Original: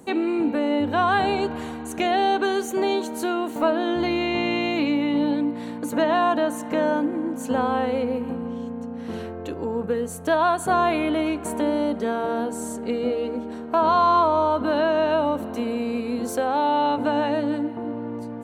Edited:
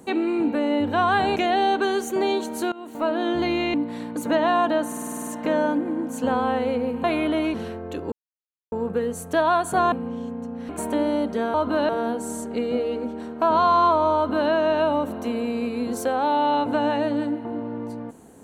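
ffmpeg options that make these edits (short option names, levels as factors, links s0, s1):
-filter_complex "[0:a]asplit=19[s0][s1][s2][s3][s4][s5][s6][s7][s8][s9][s10][s11][s12][s13][s14][s15][s16][s17][s18];[s0]atrim=end=1.362[s19];[s1]atrim=start=1.968:end=3.33,asetpts=PTS-STARTPTS,afade=t=out:st=1.358:d=0.004:c=hsin:silence=0.1[s20];[s2]atrim=start=3.33:end=4.352,asetpts=PTS-STARTPTS,afade=t=in:d=0.51:silence=0.1[s21];[s3]atrim=start=5.408:end=6.592[s22];[s4]atrim=start=6.538:end=6.592[s23];[s5]atrim=start=6.538:end=6.592[s24];[s6]atrim=start=6.538:end=6.592[s25];[s7]atrim=start=6.538:end=6.592[s26];[s8]atrim=start=6.538:end=6.592[s27];[s9]atrim=start=6.538:end=6.592[s28];[s10]atrim=start=6.538:end=6.592[s29];[s11]atrim=start=6.538:end=8.312[s30];[s12]atrim=start=10.858:end=11.362[s31];[s13]atrim=start=9.078:end=9.66,asetpts=PTS-STARTPTS,afade=t=out:st=0.578:d=0.004:c=hsin,apad=pad_dur=0.6[s32];[s14]atrim=start=9.66:end=10.862,asetpts=PTS-STARTPTS,afade=t=in:d=0.004:c=hsin[s33];[s15]atrim=start=8.308:end=9.082[s34];[s16]atrim=start=11.358:end=12.212[s35];[s17]atrim=start=14.478:end=14.832[s36];[s18]atrim=start=12.208[s37];[s20][s21]concat=n=2:v=0:a=1[s38];[s19][s38]acrossfade=d=0.004:c1=hsin:c2=hsin[s39];[s39][s22]acrossfade=d=0.004:c1=hsin:c2=hsin[s40];[s40][s23]acrossfade=d=0.004:c1=hsin:c2=hsin[s41];[s41][s24]acrossfade=d=0.004:c1=hsin:c2=hsin[s42];[s42][s25]acrossfade=d=0.004:c1=hsin:c2=hsin[s43];[s43][s26]acrossfade=d=0.004:c1=hsin:c2=hsin[s44];[s44][s27]acrossfade=d=0.004:c1=hsin:c2=hsin[s45];[s45][s28]acrossfade=d=0.004:c1=hsin:c2=hsin[s46];[s46][s29]acrossfade=d=0.004:c1=hsin:c2=hsin[s47];[s47][s30]acrossfade=d=0.004:c1=hsin:c2=hsin[s48];[s48][s31]acrossfade=d=0.004:c1=hsin:c2=hsin[s49];[s32][s33]concat=n=2:v=0:a=1[s50];[s49][s50]acrossfade=d=0.004:c1=hsin:c2=hsin[s51];[s51][s34]acrossfade=d=0.004:c1=hsin:c2=hsin[s52];[s52][s35]acrossfade=d=0.004:c1=hsin:c2=hsin[s53];[s53][s36]acrossfade=d=0.004:c1=hsin:c2=hsin[s54];[s54][s37]acrossfade=d=0.004:c1=hsin:c2=hsin"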